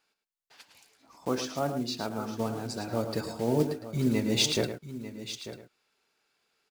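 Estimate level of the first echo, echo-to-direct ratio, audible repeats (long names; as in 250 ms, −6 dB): −9.5 dB, −7.5 dB, 3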